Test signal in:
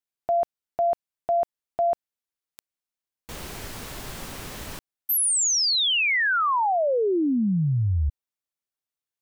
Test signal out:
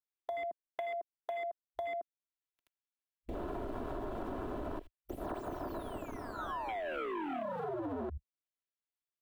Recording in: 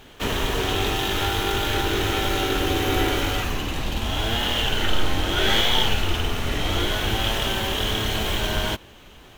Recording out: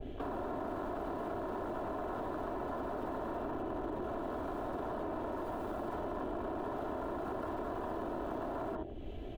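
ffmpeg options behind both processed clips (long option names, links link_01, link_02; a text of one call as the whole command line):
ffmpeg -i in.wav -filter_complex "[0:a]aecho=1:1:78:0.237,aeval=exprs='(mod(13.3*val(0)+1,2)-1)/13.3':channel_layout=same,acrossover=split=230|900[link_01][link_02][link_03];[link_01]acompressor=threshold=-48dB:ratio=4[link_04];[link_02]acompressor=threshold=-35dB:ratio=4[link_05];[link_03]acompressor=threshold=-53dB:ratio=4[link_06];[link_04][link_05][link_06]amix=inputs=3:normalize=0,highshelf=frequency=4200:width_type=q:width=1.5:gain=-8,aecho=1:1:3:0.53,afwtdn=0.00708,acompressor=threshold=-44dB:ratio=6:attack=15:release=58:knee=1:detection=peak,adynamicequalizer=threshold=0.00126:dfrequency=1600:dqfactor=0.7:tfrequency=1600:tqfactor=0.7:attack=5:release=100:ratio=0.375:range=2:mode=boostabove:tftype=highshelf,volume=5.5dB" out.wav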